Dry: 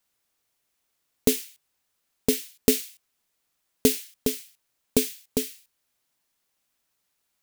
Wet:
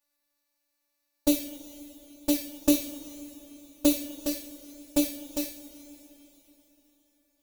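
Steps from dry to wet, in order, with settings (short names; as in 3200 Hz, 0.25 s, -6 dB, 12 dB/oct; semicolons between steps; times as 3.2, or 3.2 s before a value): envelope flanger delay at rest 10.9 ms, full sweep at -19 dBFS; robotiser 291 Hz; two-slope reverb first 0.31 s, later 3.9 s, from -18 dB, DRR 2 dB; gain -1 dB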